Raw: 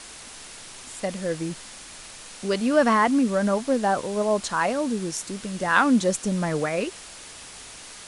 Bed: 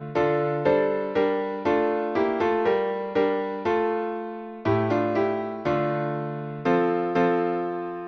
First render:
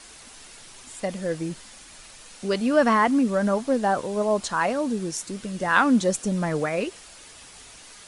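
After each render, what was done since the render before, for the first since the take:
broadband denoise 6 dB, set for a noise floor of −43 dBFS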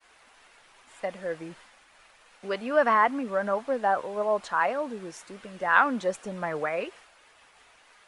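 downward expander −41 dBFS
three-way crossover with the lows and the highs turned down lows −14 dB, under 490 Hz, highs −16 dB, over 2,800 Hz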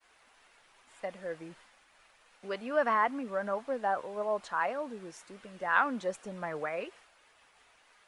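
level −6 dB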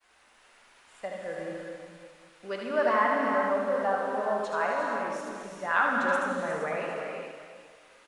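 multi-tap delay 76/357/754 ms −5/−10/−19.5 dB
reverb whose tail is shaped and stops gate 500 ms flat, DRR 0 dB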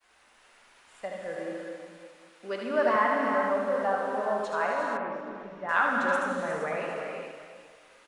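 0:01.36–0:02.96: low shelf with overshoot 160 Hz −11.5 dB, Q 1.5
0:04.97–0:05.69: high-frequency loss of the air 360 metres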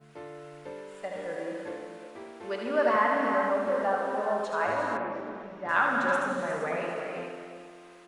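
mix in bed −21 dB

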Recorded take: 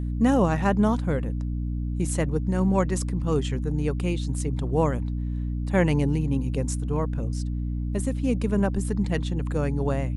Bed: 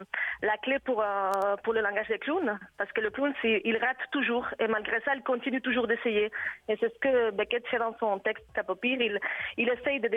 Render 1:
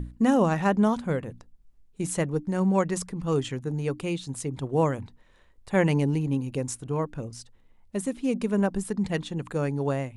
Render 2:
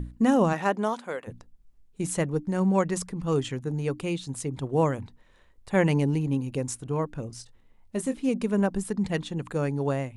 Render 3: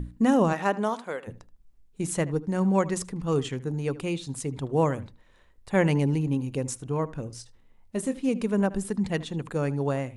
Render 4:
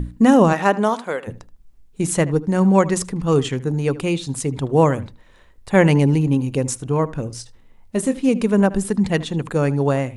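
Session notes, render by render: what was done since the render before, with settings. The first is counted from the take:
mains-hum notches 60/120/180/240/300 Hz
0:00.52–0:01.26: high-pass filter 230 Hz → 640 Hz; 0:07.27–0:08.29: double-tracking delay 23 ms −10 dB
feedback echo with a low-pass in the loop 77 ms, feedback 15%, low-pass 3,900 Hz, level −18 dB
level +8.5 dB

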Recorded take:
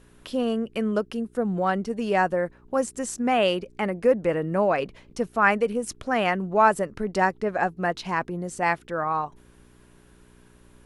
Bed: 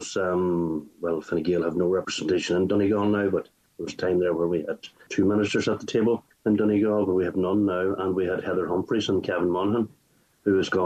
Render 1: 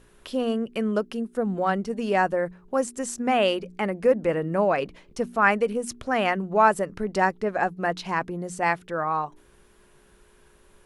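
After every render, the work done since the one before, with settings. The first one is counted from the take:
hum removal 60 Hz, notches 5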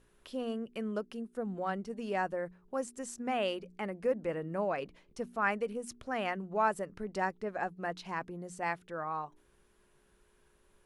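level −11 dB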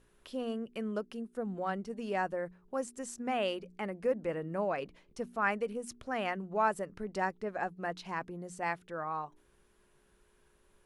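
no processing that can be heard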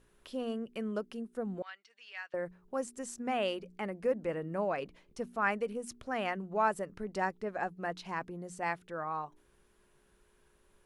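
0:01.62–0:02.34: flat-topped band-pass 3,000 Hz, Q 0.98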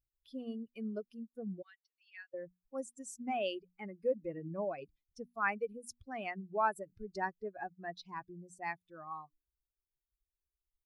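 spectral dynamics exaggerated over time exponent 2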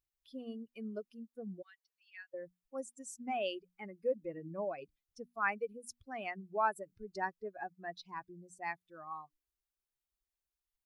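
low-shelf EQ 210 Hz −6.5 dB

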